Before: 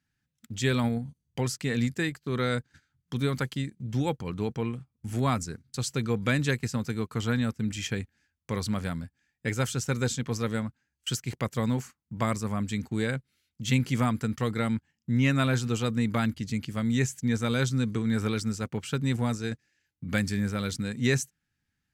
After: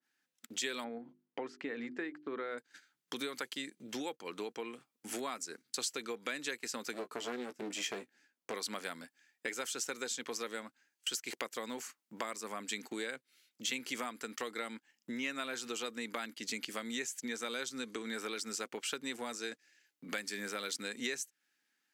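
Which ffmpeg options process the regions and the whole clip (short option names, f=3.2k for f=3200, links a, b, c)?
-filter_complex "[0:a]asettb=1/sr,asplit=3[a][b][c];[a]atrim=end=0.844[d];[b]atrim=start=0.84:end=2.58,asetpts=PTS-STARTPTS,afade=t=in:d=0.004:c=qsin,afade=t=out:st=1.736:d=0.004:c=qsin,lowpass=1.6k,equalizer=f=290:t=o:w=0.32:g=5.5,bandreject=f=50:t=h:w=6,bandreject=f=100:t=h:w=6,bandreject=f=150:t=h:w=6,bandreject=f=200:t=h:w=6,bandreject=f=250:t=h:w=6,bandreject=f=300:t=h:w=6,bandreject=f=350:t=h:w=6,bandreject=f=400:t=h:w=6[e];[c]atrim=start=2.576[f];[d][e]acrossfade=d=0.004:c1=hsin:c2=qsin[g];[g][f]acrossfade=d=0.004:c1=qsin:c2=hsin,asettb=1/sr,asplit=3[h][i][j];[h]atrim=end=6.934[k];[i]atrim=start=6.93:end=8.54,asetpts=PTS-STARTPTS,afade=t=in:d=0.004:c=qsin,afade=t=out:st=1.606:d=0.004:c=qsin,tiltshelf=f=850:g=5.5,aeval=exprs='clip(val(0),-1,0.0335)':c=same,asplit=2[l][m];[m]adelay=16,volume=-9.5dB[n];[l][n]amix=inputs=2:normalize=0,atrim=end_sample=71001[o];[j]atrim=start=8.536[p];[k][o]acrossfade=d=0.004:c1=hsin:c2=qsin[q];[q][p]acrossfade=d=0.004:c1=qsin:c2=hsin,highpass=f=310:w=0.5412,highpass=f=310:w=1.3066,acompressor=threshold=-41dB:ratio=6,adynamicequalizer=threshold=0.00112:dfrequency=1500:dqfactor=0.7:tfrequency=1500:tqfactor=0.7:attack=5:release=100:ratio=0.375:range=2.5:mode=boostabove:tftype=highshelf,volume=2.5dB"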